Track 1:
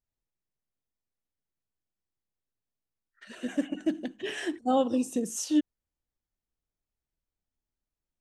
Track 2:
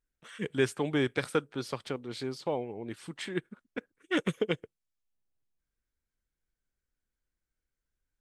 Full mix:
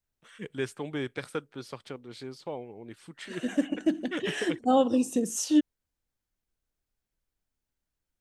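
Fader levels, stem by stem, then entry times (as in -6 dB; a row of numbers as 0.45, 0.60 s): +2.5, -5.0 dB; 0.00, 0.00 s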